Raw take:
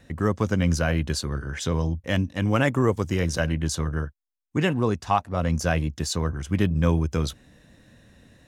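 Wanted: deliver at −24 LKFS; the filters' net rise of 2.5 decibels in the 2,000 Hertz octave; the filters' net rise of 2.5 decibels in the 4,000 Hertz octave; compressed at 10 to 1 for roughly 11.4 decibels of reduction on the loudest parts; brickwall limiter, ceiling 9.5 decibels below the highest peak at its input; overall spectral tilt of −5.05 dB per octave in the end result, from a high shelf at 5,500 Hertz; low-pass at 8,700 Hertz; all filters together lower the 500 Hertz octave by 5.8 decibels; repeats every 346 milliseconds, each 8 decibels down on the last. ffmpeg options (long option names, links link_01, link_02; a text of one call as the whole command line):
ffmpeg -i in.wav -af "lowpass=8700,equalizer=frequency=500:width_type=o:gain=-7.5,equalizer=frequency=2000:width_type=o:gain=3.5,equalizer=frequency=4000:width_type=o:gain=5.5,highshelf=frequency=5500:gain=-7.5,acompressor=threshold=-29dB:ratio=10,alimiter=level_in=1dB:limit=-24dB:level=0:latency=1,volume=-1dB,aecho=1:1:346|692|1038|1384|1730:0.398|0.159|0.0637|0.0255|0.0102,volume=11.5dB" out.wav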